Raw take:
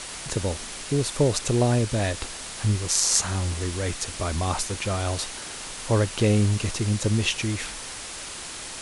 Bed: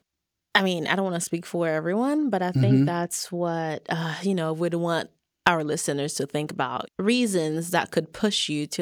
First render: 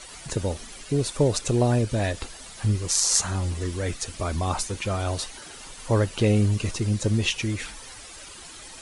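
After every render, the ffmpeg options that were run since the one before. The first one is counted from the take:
-af "afftdn=nr=11:nf=-37"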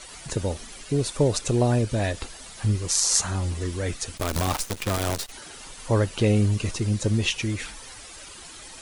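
-filter_complex "[0:a]asettb=1/sr,asplit=3[s0][s1][s2];[s0]atrim=end=4.174[s3];[s1]atrim=start=4.17:end=5.32,asetpts=PTS-STARTPTS,afade=t=in:d=0.004:c=qsin,afade=t=out:st=1.146:d=0.004:c=qsin,acrusher=bits=5:dc=4:mix=0:aa=0.000001[s4];[s2]atrim=start=5.316[s5];[s3][s4]acrossfade=d=0.004:c1=hsin:c2=qsin[s6];[s6][s5]acrossfade=d=0.004:c1=qsin:c2=hsin"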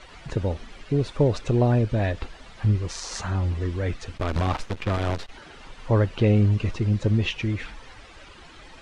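-af "lowpass=2900,lowshelf=f=110:g=4.5"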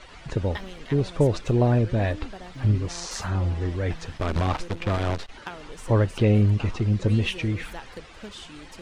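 -filter_complex "[1:a]volume=0.133[s0];[0:a][s0]amix=inputs=2:normalize=0"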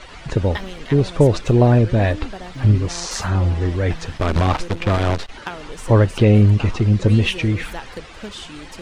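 -af "volume=2.24,alimiter=limit=0.708:level=0:latency=1"

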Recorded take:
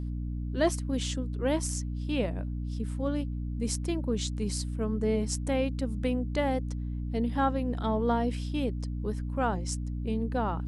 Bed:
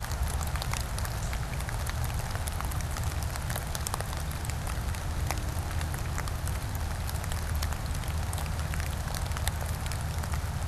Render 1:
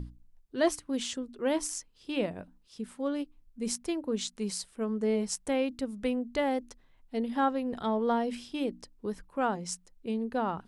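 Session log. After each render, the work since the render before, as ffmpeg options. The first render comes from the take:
-af "bandreject=f=60:t=h:w=6,bandreject=f=120:t=h:w=6,bandreject=f=180:t=h:w=6,bandreject=f=240:t=h:w=6,bandreject=f=300:t=h:w=6"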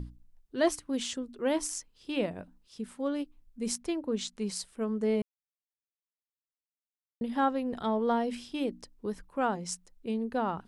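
-filter_complex "[0:a]asettb=1/sr,asplit=3[s0][s1][s2];[s0]atrim=end=3.814[s3];[s1]atrim=start=3.81:end=4.56,asetpts=PTS-STARTPTS,afade=t=in:d=0.004:c=qsin,afade=t=out:st=0.746:d=0.004:c=qsin,highshelf=f=8000:g=-7[s4];[s2]atrim=start=4.556[s5];[s3][s4]acrossfade=d=0.004:c1=hsin:c2=qsin[s6];[s6][s5]acrossfade=d=0.004:c1=qsin:c2=hsin,asplit=3[s7][s8][s9];[s7]atrim=end=5.22,asetpts=PTS-STARTPTS,afade=t=out:st=5.216:d=0.004:c=hsin[s10];[s8]atrim=start=5.22:end=7.21,asetpts=PTS-STARTPTS,volume=0[s11];[s9]atrim=start=7.21,asetpts=PTS-STARTPTS,afade=t=in:d=0.004:c=hsin[s12];[s10][s11][s12]concat=n=3:v=0:a=1"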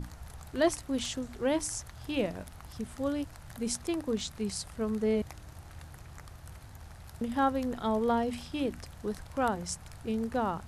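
-filter_complex "[1:a]volume=0.168[s0];[0:a][s0]amix=inputs=2:normalize=0"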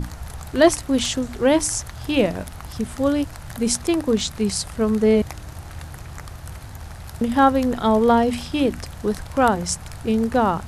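-af "volume=3.98"

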